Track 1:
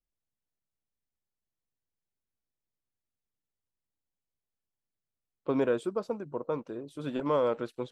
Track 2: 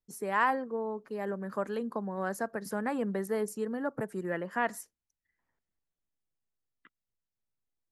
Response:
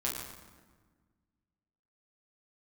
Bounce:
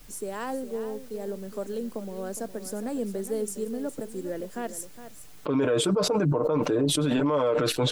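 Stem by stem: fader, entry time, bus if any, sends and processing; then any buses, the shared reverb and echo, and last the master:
-1.5 dB, 0.00 s, no send, no echo send, comb 6.7 ms, depth 77%; fast leveller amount 100%
-0.5 dB, 0.00 s, no send, echo send -12.5 dB, graphic EQ 125/250/500/1000/2000/4000/8000 Hz -10/+5/+4/-9/-11/+3/+11 dB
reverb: off
echo: echo 0.412 s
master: limiter -16 dBFS, peak gain reduction 6.5 dB

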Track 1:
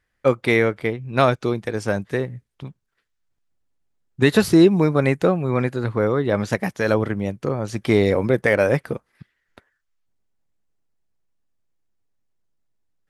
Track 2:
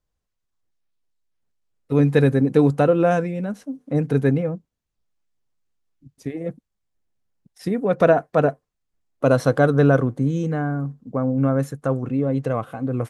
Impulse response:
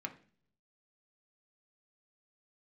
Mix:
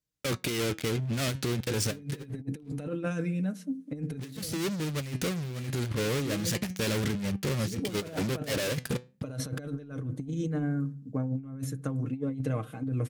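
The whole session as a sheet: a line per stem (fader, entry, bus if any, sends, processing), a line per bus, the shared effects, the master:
-6.0 dB, 0.00 s, send -19.5 dB, fuzz box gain 36 dB, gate -39 dBFS; flange 0.28 Hz, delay 4.6 ms, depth 3.6 ms, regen +83%
-6.5 dB, 0.00 s, send -6 dB, comb 6.5 ms, depth 54%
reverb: on, RT60 0.45 s, pre-delay 3 ms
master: HPF 80 Hz 12 dB/oct; bell 860 Hz -13.5 dB 2.5 oct; negative-ratio compressor -31 dBFS, ratio -0.5

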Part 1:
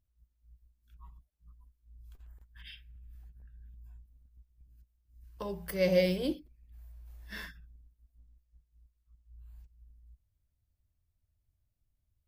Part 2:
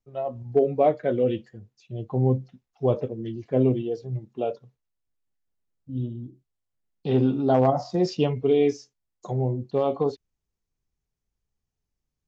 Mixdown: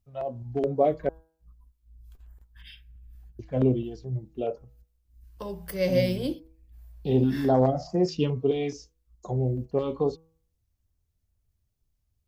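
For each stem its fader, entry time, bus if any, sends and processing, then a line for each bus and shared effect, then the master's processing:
+2.5 dB, 0.00 s, no send, dry
-0.5 dB, 0.00 s, muted 1.09–3.39, no send, stepped notch 4.7 Hz 360–3700 Hz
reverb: off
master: bell 1800 Hz -2.5 dB 1.8 oct; de-hum 161.6 Hz, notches 10

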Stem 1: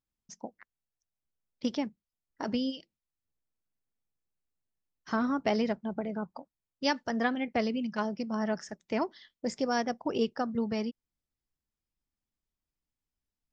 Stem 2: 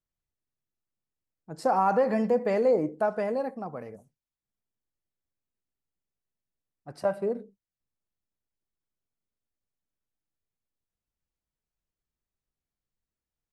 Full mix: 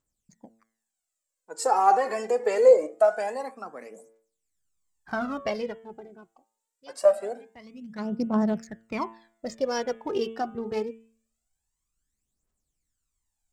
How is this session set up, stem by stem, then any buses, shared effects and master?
+0.5 dB, 0.00 s, no send, Wiener smoothing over 15 samples; auto duck -24 dB, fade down 1.50 s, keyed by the second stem
+1.5 dB, 0.00 s, no send, Bessel high-pass 410 Hz, order 6; bell 7600 Hz +15 dB 0.6 oct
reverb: off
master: de-hum 112.5 Hz, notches 32; phaser 0.24 Hz, delay 2.8 ms, feedback 66%

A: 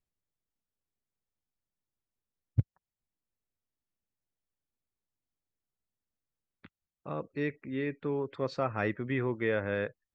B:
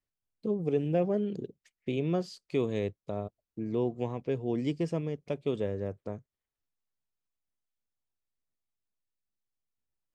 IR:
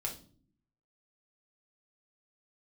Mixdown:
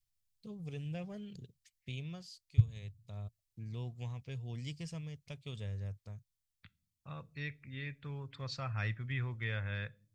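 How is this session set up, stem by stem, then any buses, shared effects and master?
+2.0 dB, 0.00 s, send -16 dB, dry
+0.5 dB, 0.00 s, no send, auto duck -11 dB, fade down 0.65 s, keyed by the first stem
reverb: on, pre-delay 6 ms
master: EQ curve 110 Hz 0 dB, 330 Hz -25 dB, 4500 Hz +1 dB

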